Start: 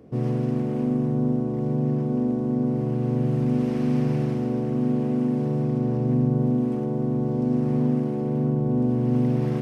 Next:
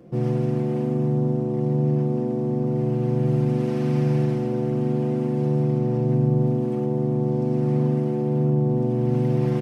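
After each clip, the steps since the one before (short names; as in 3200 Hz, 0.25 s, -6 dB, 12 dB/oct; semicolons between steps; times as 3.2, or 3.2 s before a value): comb 5.8 ms, depth 78%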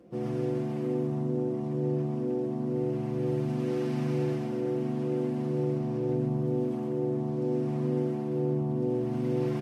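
bell 130 Hz -12 dB 0.57 oct; tapped delay 0.129/0.41 s -3.5/-19 dB; gain -5.5 dB; Vorbis 48 kbps 44100 Hz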